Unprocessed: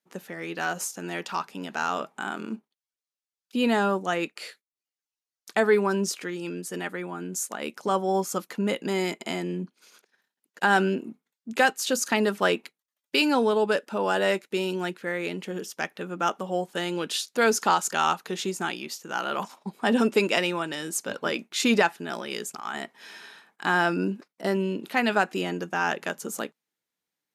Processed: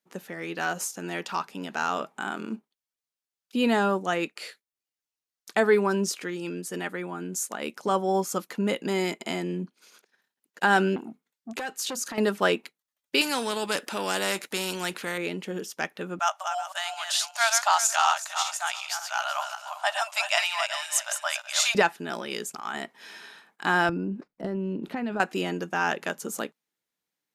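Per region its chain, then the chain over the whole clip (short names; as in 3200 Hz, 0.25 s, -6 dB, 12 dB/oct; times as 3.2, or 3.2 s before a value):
10.96–12.18 compressor, threshold -26 dBFS + core saturation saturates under 1300 Hz
13.21–15.18 bell 10000 Hz +3 dB 0.21 oct + spectral compressor 2:1
16.19–21.75 regenerating reverse delay 0.187 s, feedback 43%, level -6 dB + brick-wall FIR high-pass 580 Hz + bell 6600 Hz +5.5 dB 1.3 oct
23.89–25.2 tilt -3.5 dB/oct + compressor, threshold -27 dBFS
whole clip: dry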